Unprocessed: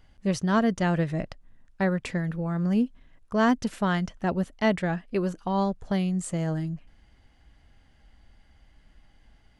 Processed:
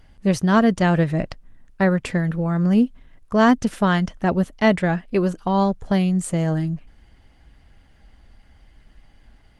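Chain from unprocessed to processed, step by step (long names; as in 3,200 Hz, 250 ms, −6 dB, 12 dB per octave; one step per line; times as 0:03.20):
level +7 dB
Opus 24 kbit/s 48,000 Hz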